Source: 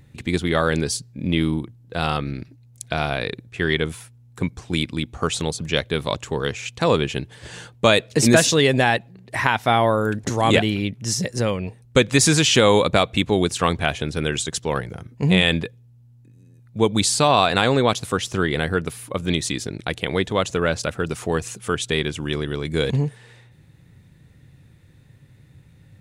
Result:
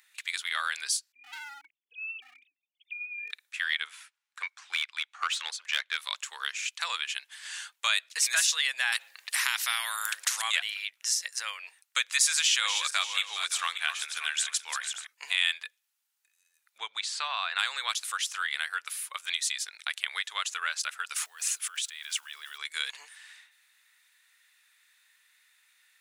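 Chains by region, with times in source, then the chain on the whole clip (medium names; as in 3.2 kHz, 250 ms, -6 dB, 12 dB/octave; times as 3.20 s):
1.12–3.31 s: formants replaced by sine waves + inverse Chebyshev band-stop 600–1600 Hz + overload inside the chain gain 27 dB
3.87–5.97 s: treble shelf 12 kHz -11.5 dB + overdrive pedal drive 17 dB, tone 2.1 kHz, clips at -5 dBFS + upward expansion, over -34 dBFS
8.92–10.42 s: hum notches 60/120/180/240/300/360/420/480/540 Hz + spectrum-flattening compressor 2:1
12.33–15.07 s: backward echo that repeats 290 ms, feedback 42%, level -8.5 dB + hum notches 60/120/180/240/300/360/420/480/540 Hz
16.78–17.59 s: tape spacing loss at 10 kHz 23 dB + three bands compressed up and down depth 40%
21.16–22.59 s: block-companded coder 7-bit + compressor with a negative ratio -32 dBFS
whole clip: high-pass 1.3 kHz 24 dB/octave; treble shelf 6.3 kHz +5 dB; compression 1.5:1, threshold -34 dBFS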